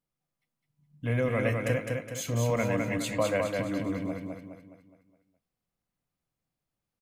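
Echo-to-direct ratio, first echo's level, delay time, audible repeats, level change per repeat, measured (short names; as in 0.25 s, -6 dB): -2.5 dB, -3.5 dB, 0.208 s, 5, -7.0 dB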